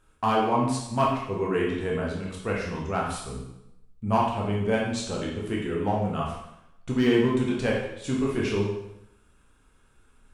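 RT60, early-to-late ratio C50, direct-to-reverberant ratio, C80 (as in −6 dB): 0.85 s, 2.0 dB, −3.5 dB, 5.5 dB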